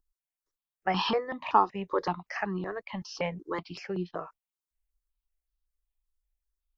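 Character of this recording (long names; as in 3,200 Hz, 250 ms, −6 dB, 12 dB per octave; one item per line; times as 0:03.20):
notches that jump at a steady rate 5.3 Hz 590–2,200 Hz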